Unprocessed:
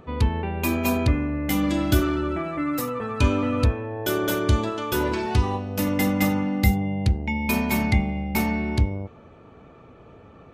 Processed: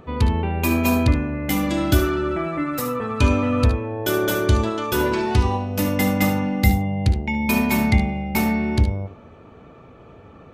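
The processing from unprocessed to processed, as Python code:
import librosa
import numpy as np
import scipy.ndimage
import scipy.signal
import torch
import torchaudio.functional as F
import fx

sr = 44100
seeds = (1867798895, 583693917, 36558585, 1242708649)

p1 = x + fx.room_early_taps(x, sr, ms=(60, 73), db=(-14.5, -11.5), dry=0)
y = F.gain(torch.from_numpy(p1), 2.5).numpy()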